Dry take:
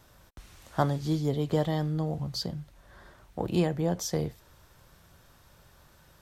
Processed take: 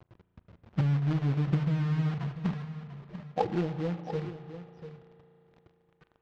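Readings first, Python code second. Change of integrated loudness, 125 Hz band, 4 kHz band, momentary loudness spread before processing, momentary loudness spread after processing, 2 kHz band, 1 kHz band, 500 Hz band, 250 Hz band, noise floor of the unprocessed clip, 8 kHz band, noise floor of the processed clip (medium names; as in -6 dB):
-1.0 dB, +2.5 dB, -10.5 dB, 9 LU, 17 LU, -0.5 dB, -2.0 dB, -5.0 dB, -1.0 dB, -60 dBFS, under -20 dB, -72 dBFS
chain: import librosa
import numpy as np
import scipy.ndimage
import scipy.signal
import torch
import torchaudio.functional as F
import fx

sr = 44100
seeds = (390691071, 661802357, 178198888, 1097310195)

p1 = fx.spec_expand(x, sr, power=2.9)
p2 = scipy.signal.sosfilt(scipy.signal.butter(2, 120.0, 'highpass', fs=sr, output='sos'), p1)
p3 = fx.env_lowpass_down(p2, sr, base_hz=370.0, full_db=-24.0)
p4 = fx.dynamic_eq(p3, sr, hz=170.0, q=1.2, threshold_db=-41.0, ratio=4.0, max_db=-6)
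p5 = fx.filter_sweep_lowpass(p4, sr, from_hz=200.0, to_hz=9500.0, start_s=2.73, end_s=4.61, q=3.8)
p6 = 10.0 ** (-28.5 / 20.0) * np.tanh(p5 / 10.0 ** (-28.5 / 20.0))
p7 = p5 + F.gain(torch.from_numpy(p6), -11.0).numpy()
p8 = fx.quant_companded(p7, sr, bits=4)
p9 = fx.air_absorb(p8, sr, metres=210.0)
p10 = p9 + fx.echo_single(p9, sr, ms=693, db=-12.0, dry=0)
p11 = fx.rev_spring(p10, sr, rt60_s=3.5, pass_ms=(35,), chirp_ms=20, drr_db=12.0)
y = fx.doppler_dist(p11, sr, depth_ms=0.29)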